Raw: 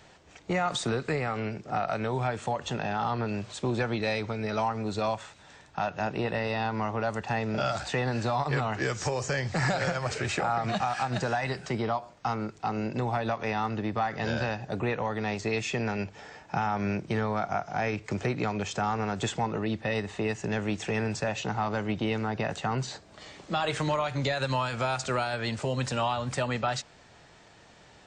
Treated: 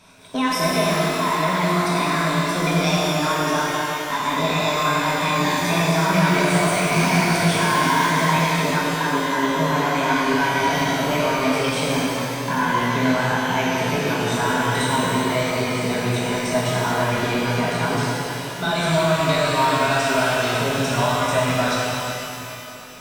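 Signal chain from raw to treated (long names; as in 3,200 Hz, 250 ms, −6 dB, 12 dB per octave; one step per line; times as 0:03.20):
gliding playback speed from 145% → 99%
EQ curve with evenly spaced ripples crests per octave 1.6, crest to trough 10 dB
reverb with rising layers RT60 2.8 s, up +12 semitones, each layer −8 dB, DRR −7 dB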